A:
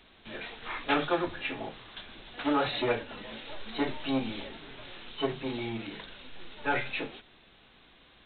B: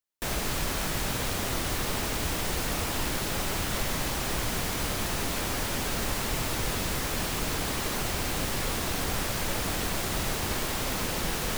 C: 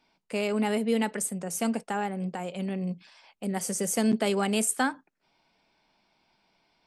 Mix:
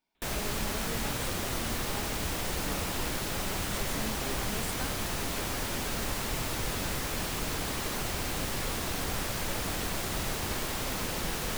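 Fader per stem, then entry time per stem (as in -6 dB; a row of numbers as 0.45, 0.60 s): -17.5, -3.0, -16.0 dB; 0.15, 0.00, 0.00 s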